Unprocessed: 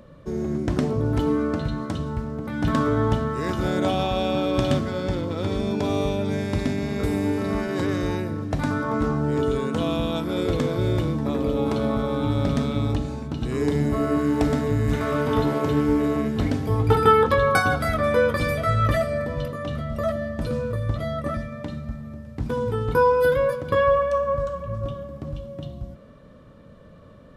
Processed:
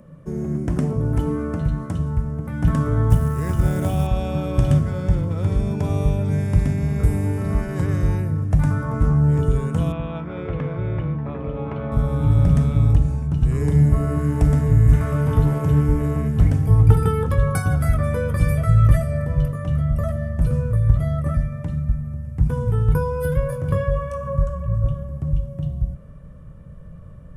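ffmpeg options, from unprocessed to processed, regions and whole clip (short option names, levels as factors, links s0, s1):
-filter_complex "[0:a]asettb=1/sr,asplit=3[s0][s1][s2];[s0]atrim=end=3.104[s3];[s1]atrim=start=3.1:end=4.07,asetpts=PTS-STARTPTS,afade=t=in:d=0.004:c=qsin,afade=t=out:st=0.966:d=0.004:c=qsin,equalizer=f=93:t=o:w=0.52:g=3.5,acrusher=bits=5:mode=log:mix=0:aa=0.000001[s4];[s2]atrim=start=4.066[s5];[s3][s4]acrossfade=d=0.004:c1=hsin:c2=qsin[s6];[s6][s5]acrossfade=d=0.004:c1=qsin:c2=hsin,asettb=1/sr,asplit=3[s7][s8][s9];[s7]atrim=end=9.924[s10];[s8]atrim=start=9.92:end=11.92,asetpts=PTS-STARTPTS,afade=t=in:d=0.004:c=qsin,afade=t=out:st=1.996:d=0.004:c=qsin,lowpass=f=2700:w=0.5412,lowpass=f=2700:w=1.3066,aemphasis=mode=production:type=bsi[s11];[s9]atrim=start=11.916[s12];[s10][s11]acrossfade=d=0.004:c1=hsin:c2=qsin[s13];[s13][s12]acrossfade=d=0.004:c1=qsin:c2=hsin,asettb=1/sr,asplit=3[s14][s15][s16];[s14]atrim=end=23.504[s17];[s15]atrim=start=23.5:end=24.43,asetpts=PTS-STARTPTS,afade=t=in:d=0.004:c=qsin,afade=t=out:st=0.926:d=0.004:c=qsin,asplit=2[s18][s19];[s19]adelay=22,volume=0.531[s20];[s18][s20]amix=inputs=2:normalize=0,atrim=end_sample=41013,acompressor=mode=upward:threshold=0.0794:ratio=2.5:attack=3.2:release=140:knee=2.83:detection=peak,highpass=40[s21];[s16]atrim=start=24.426[s22];[s17][s21]acrossfade=d=0.004:c1=hsin:c2=qsin[s23];[s23][s22]acrossfade=d=0.004:c1=qsin:c2=hsin,asubboost=boost=9.5:cutoff=75,acrossover=split=450|3000[s24][s25][s26];[s25]acompressor=threshold=0.0501:ratio=6[s27];[s24][s27][s26]amix=inputs=3:normalize=0,equalizer=f=160:t=o:w=0.67:g=12,equalizer=f=4000:t=o:w=0.67:g=-12,equalizer=f=10000:t=o:w=0.67:g=8,volume=0.75"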